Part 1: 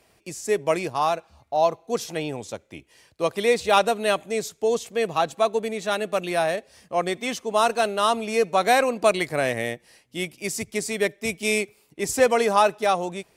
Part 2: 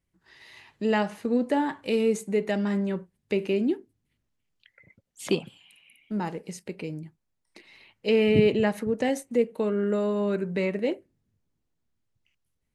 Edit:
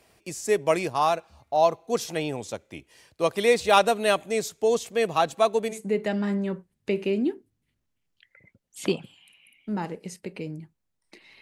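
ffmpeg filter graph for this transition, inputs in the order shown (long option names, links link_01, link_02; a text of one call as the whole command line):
ffmpeg -i cue0.wav -i cue1.wav -filter_complex "[0:a]apad=whole_dur=11.41,atrim=end=11.41,atrim=end=5.79,asetpts=PTS-STARTPTS[link_01];[1:a]atrim=start=2.1:end=7.84,asetpts=PTS-STARTPTS[link_02];[link_01][link_02]acrossfade=duration=0.12:curve1=tri:curve2=tri" out.wav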